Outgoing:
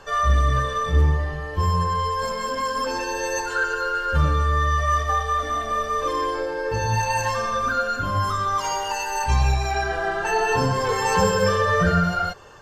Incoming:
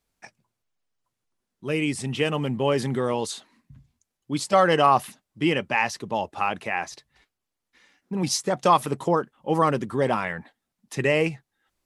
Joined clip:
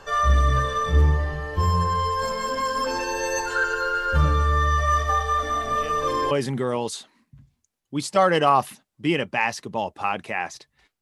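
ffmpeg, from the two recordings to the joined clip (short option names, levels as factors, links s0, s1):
-filter_complex "[1:a]asplit=2[s0][s1];[0:a]apad=whole_dur=11.01,atrim=end=11.01,atrim=end=6.312[s2];[s1]atrim=start=2.678:end=7.38[s3];[s0]atrim=start=2.02:end=2.68,asetpts=PTS-STARTPTS,volume=0.211,afade=t=in:d=0.004:c=hsin,afade=t=out:st=0.656:d=0.004:c=hsin,adelay=249165S[s4];[s2][s3]acrossfade=d=0.004:c1=hsin:c2=hsin[s5];[s5][s4]amix=inputs=2:normalize=0"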